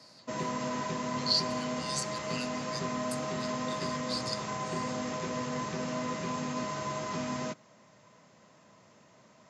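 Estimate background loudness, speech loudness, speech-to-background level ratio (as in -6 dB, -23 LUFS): -35.0 LUFS, -36.0 LUFS, -1.0 dB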